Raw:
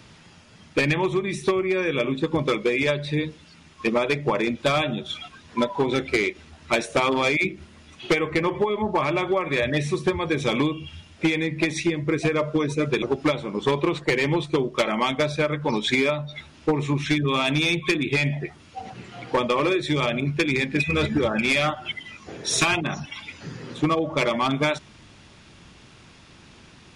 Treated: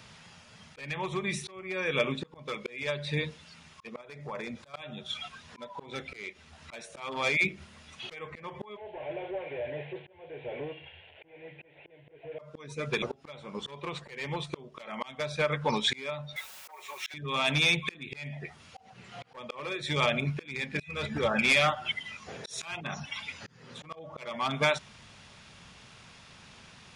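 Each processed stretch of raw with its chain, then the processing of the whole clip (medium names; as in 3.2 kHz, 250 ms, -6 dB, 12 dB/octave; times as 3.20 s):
4.01–4.74 s: peaking EQ 2.9 kHz -6.5 dB 0.65 oct + compression, threshold -28 dBFS
8.77–12.39 s: one-bit delta coder 16 kbps, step -39 dBFS + high-pass 250 Hz 6 dB/octave + static phaser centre 500 Hz, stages 4
16.36–17.14 s: high-pass 530 Hz 24 dB/octave + comb 5.4 ms, depth 74% + word length cut 8-bit, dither triangular
whole clip: peaking EQ 320 Hz -12.5 dB 0.56 oct; slow attack 508 ms; bass shelf 120 Hz -7.5 dB; trim -1 dB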